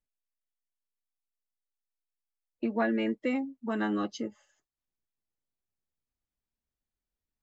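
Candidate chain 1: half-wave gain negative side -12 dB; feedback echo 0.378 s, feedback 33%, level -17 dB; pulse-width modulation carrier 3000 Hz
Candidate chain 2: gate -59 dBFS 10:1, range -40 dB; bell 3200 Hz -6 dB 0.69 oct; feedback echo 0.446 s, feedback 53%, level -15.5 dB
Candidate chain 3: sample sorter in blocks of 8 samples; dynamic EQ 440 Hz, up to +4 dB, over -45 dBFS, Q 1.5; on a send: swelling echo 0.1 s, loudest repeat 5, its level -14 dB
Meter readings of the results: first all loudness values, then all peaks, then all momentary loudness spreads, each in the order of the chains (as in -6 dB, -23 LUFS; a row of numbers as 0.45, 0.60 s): -37.5, -32.0, -30.0 LUFS; -19.0, -16.0, -14.5 dBFS; 6, 19, 18 LU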